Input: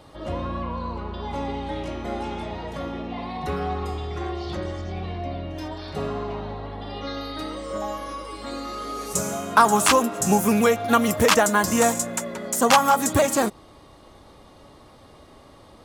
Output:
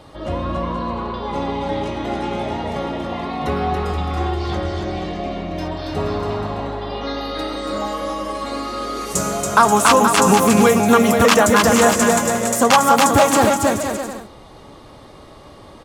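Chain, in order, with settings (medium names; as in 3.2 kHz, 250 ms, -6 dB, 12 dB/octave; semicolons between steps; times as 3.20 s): treble shelf 10 kHz -5 dB; bouncing-ball echo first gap 280 ms, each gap 0.7×, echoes 5; in parallel at +3 dB: peak limiter -9.5 dBFS, peak gain reduction 6.5 dB; on the sum: trim -2.5 dB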